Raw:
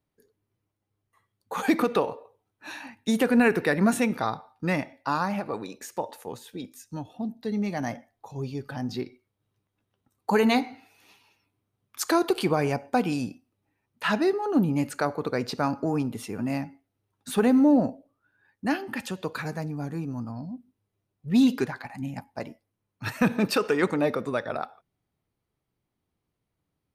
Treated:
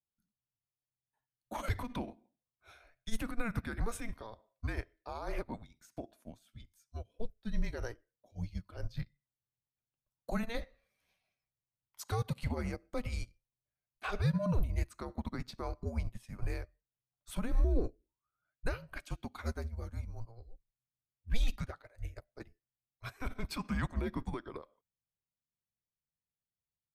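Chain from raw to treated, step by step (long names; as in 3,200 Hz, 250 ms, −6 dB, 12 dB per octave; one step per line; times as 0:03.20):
brickwall limiter −22 dBFS, peak gain reduction 11 dB
frequency shifter −230 Hz
expander for the loud parts 2.5 to 1, over −40 dBFS
level +3.5 dB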